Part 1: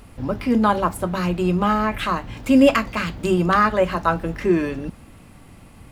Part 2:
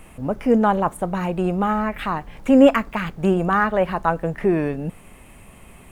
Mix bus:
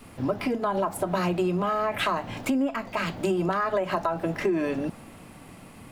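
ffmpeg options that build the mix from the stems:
-filter_complex "[0:a]highpass=130,adynamicequalizer=threshold=0.0178:dfrequency=690:dqfactor=1.9:tfrequency=690:tqfactor=1.9:attack=5:release=100:ratio=0.375:range=4:mode=boostabove:tftype=bell,alimiter=limit=0.282:level=0:latency=1:release=76,volume=1.12[s0];[1:a]equalizer=f=125:t=o:w=1:g=-9,equalizer=f=250:t=o:w=1:g=9,equalizer=f=1000:t=o:w=1:g=6,volume=0.251,asplit=2[s1][s2];[s2]apad=whole_len=260826[s3];[s0][s3]sidechaincompress=threshold=0.0501:ratio=10:attack=43:release=582[s4];[s4][s1]amix=inputs=2:normalize=0,acompressor=threshold=0.0794:ratio=5"

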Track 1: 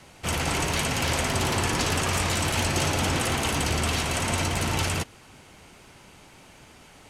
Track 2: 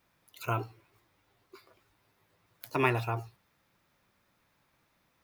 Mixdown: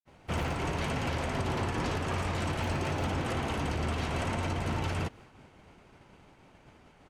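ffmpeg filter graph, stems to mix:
-filter_complex "[0:a]lowpass=f=1400:p=1,adelay=50,volume=0.944[s0];[1:a]volume=0.335[s1];[s0][s1]amix=inputs=2:normalize=0,agate=range=0.0224:threshold=0.00398:ratio=3:detection=peak,alimiter=limit=0.075:level=0:latency=1:release=143"

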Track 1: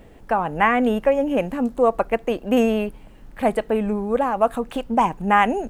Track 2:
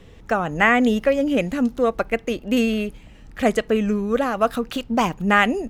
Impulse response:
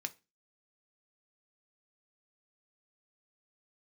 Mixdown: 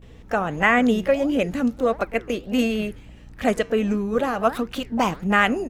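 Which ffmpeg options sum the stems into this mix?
-filter_complex "[0:a]aeval=exprs='val(0)+0.0316*(sin(2*PI*60*n/s)+sin(2*PI*2*60*n/s)/2+sin(2*PI*3*60*n/s)/3+sin(2*PI*4*60*n/s)/4+sin(2*PI*5*60*n/s)/5)':c=same,volume=0.141[s0];[1:a]flanger=delay=2.7:depth=8.3:regen=90:speed=1.5:shape=sinusoidal,adelay=20,volume=1.41[s1];[s0][s1]amix=inputs=2:normalize=0"

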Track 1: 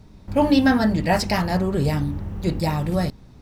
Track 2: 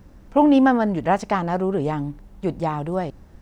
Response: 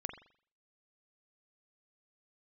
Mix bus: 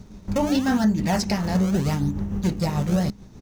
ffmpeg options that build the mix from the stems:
-filter_complex "[0:a]tremolo=f=6.8:d=0.48,volume=1.26[s0];[1:a]alimiter=limit=0.211:level=0:latency=1,acrusher=samples=31:mix=1:aa=0.000001:lfo=1:lforange=49.6:lforate=0.82,volume=-1,adelay=1.4,volume=0.473[s1];[s0][s1]amix=inputs=2:normalize=0,equalizer=f=200:t=o:w=0.33:g=9,equalizer=f=400:t=o:w=0.33:g=5,equalizer=f=6300:t=o:w=0.33:g=10,alimiter=limit=0.237:level=0:latency=1:release=365"

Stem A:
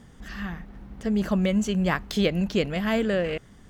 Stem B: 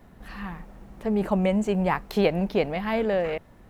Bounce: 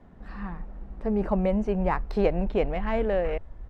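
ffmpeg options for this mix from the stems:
-filter_complex "[0:a]volume=0.106[s0];[1:a]highshelf=f=2300:g=-11,adelay=0.3,volume=0.944[s1];[s0][s1]amix=inputs=2:normalize=0,adynamicsmooth=sensitivity=4:basefreq=6200,asubboost=boost=11.5:cutoff=56"

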